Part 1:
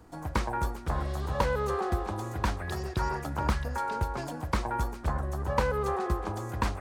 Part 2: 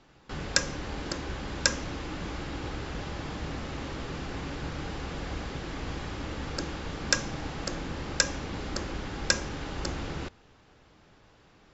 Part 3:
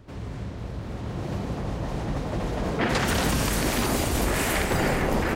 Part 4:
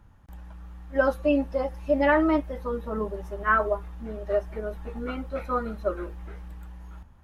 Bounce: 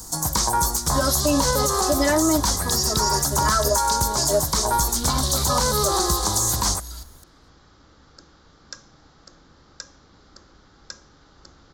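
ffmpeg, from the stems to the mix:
ffmpeg -i stem1.wav -i stem2.wav -i stem3.wav -i stem4.wav -filter_complex "[0:a]acrossover=split=4000[link_01][link_02];[link_02]acompressor=threshold=-50dB:ratio=4:attack=1:release=60[link_03];[link_01][link_03]amix=inputs=2:normalize=0,equalizer=frequency=160:width_type=o:width=0.67:gain=7,equalizer=frequency=1000:width_type=o:width=0.67:gain=8,equalizer=frequency=6300:width_type=o:width=0.67:gain=6,acontrast=37,volume=-0.5dB[link_04];[1:a]lowpass=2200,equalizer=frequency=1300:width_type=o:width=0.56:gain=7,adelay=1600,volume=-18.5dB[link_05];[2:a]bandpass=frequency=3900:width_type=q:width=3.4:csg=0,adelay=2150,volume=-7.5dB[link_06];[3:a]aecho=1:1:3:0.63,volume=2dB,asplit=2[link_07][link_08];[link_08]apad=whole_len=330925[link_09];[link_06][link_09]sidechaingate=range=-30dB:threshold=-35dB:ratio=16:detection=peak[link_10];[link_04][link_05][link_10][link_07]amix=inputs=4:normalize=0,aexciter=amount=10.1:drive=8.6:freq=4000,alimiter=limit=-10dB:level=0:latency=1:release=88" out.wav

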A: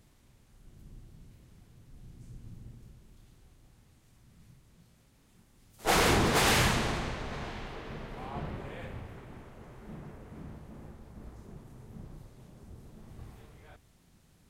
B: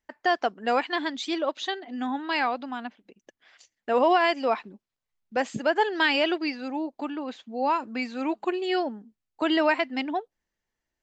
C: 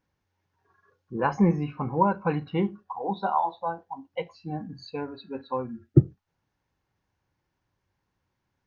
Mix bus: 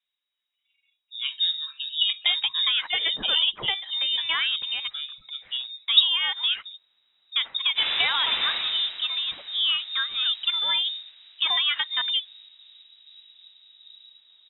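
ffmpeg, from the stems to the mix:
ffmpeg -i stem1.wav -i stem2.wav -i stem3.wav -filter_complex "[0:a]adelay=1900,volume=-10dB[link_01];[1:a]acompressor=threshold=-25dB:ratio=5,adelay=2000,volume=-1.5dB[link_02];[2:a]volume=-7dB,asplit=2[link_03][link_04];[link_04]apad=whole_len=723127[link_05];[link_01][link_05]sidechaincompress=threshold=-48dB:ratio=8:attack=16:release=175[link_06];[link_06][link_02][link_03]amix=inputs=3:normalize=0,dynaudnorm=framelen=380:gausssize=9:maxgain=6dB,lowpass=frequency=3300:width_type=q:width=0.5098,lowpass=frequency=3300:width_type=q:width=0.6013,lowpass=frequency=3300:width_type=q:width=0.9,lowpass=frequency=3300:width_type=q:width=2.563,afreqshift=-3900" out.wav

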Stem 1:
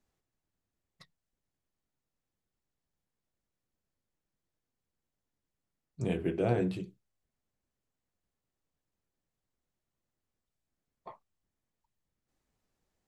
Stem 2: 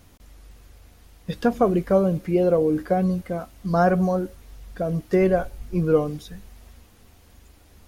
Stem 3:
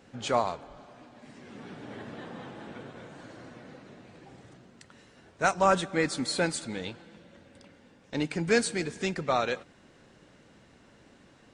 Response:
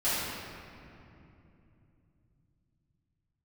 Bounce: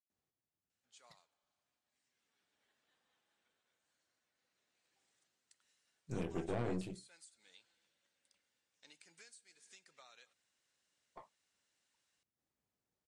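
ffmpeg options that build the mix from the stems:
-filter_complex "[0:a]highpass=82,aeval=exprs='(tanh(31.6*val(0)+0.8)-tanh(0.8))/31.6':channel_layout=same,adelay=100,volume=-3dB[link_01];[2:a]aderivative,adelay=700,volume=-12dB,afade=type=in:start_time=4.32:duration=0.75:silence=0.334965,acompressor=threshold=-57dB:ratio=12,volume=0dB[link_02];[link_01][link_02]amix=inputs=2:normalize=0"

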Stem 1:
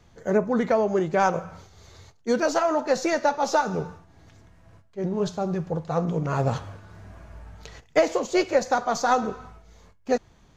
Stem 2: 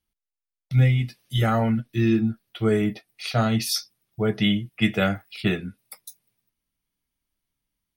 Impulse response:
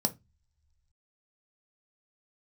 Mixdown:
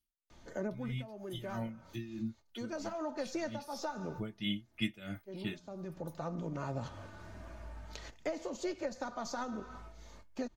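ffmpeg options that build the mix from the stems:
-filter_complex "[0:a]equalizer=frequency=4400:width_type=o:width=0.77:gain=2,acrossover=split=230[link_01][link_02];[link_02]acompressor=threshold=-33dB:ratio=2.5[link_03];[link_01][link_03]amix=inputs=2:normalize=0,adelay=300,volume=-2dB[link_04];[1:a]equalizer=frequency=790:width_type=o:width=2.9:gain=-10.5,aeval=exprs='val(0)*pow(10,-18*(0.5-0.5*cos(2*PI*3.1*n/s))/20)':channel_layout=same,volume=8.5dB,afade=type=out:start_time=2.2:duration=0.56:silence=0.375837,afade=type=in:start_time=3.66:duration=0.35:silence=0.281838,afade=type=out:start_time=5.08:duration=0.78:silence=0.266073,asplit=2[link_05][link_06];[link_06]apad=whole_len=479101[link_07];[link_04][link_07]sidechaincompress=threshold=-39dB:ratio=12:attack=20:release=679[link_08];[link_08][link_05]amix=inputs=2:normalize=0,equalizer=frequency=84:width_type=o:width=0.77:gain=-6,aecho=1:1:3.3:0.44,acompressor=threshold=-46dB:ratio=1.5"

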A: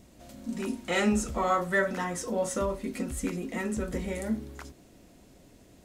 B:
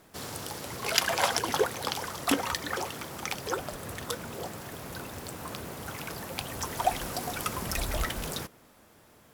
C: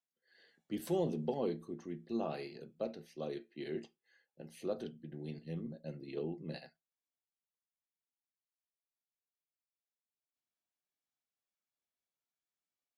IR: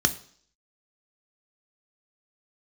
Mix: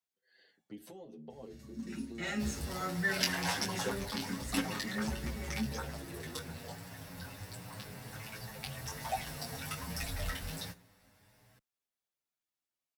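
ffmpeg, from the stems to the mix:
-filter_complex "[0:a]acrusher=bits=9:mode=log:mix=0:aa=0.000001,adelay=1300,volume=-8.5dB,asplit=2[link_01][link_02];[link_02]volume=-10dB[link_03];[1:a]flanger=delay=17:depth=5.8:speed=1.3,adelay=2250,volume=-1dB,asplit=2[link_04][link_05];[link_05]volume=-19dB[link_06];[2:a]acompressor=threshold=-47dB:ratio=6,volume=3dB[link_07];[3:a]atrim=start_sample=2205[link_08];[link_03][link_06]amix=inputs=2:normalize=0[link_09];[link_09][link_08]afir=irnorm=-1:irlink=0[link_10];[link_01][link_04][link_07][link_10]amix=inputs=4:normalize=0,asplit=2[link_11][link_12];[link_12]adelay=7.9,afreqshift=0.28[link_13];[link_11][link_13]amix=inputs=2:normalize=1"

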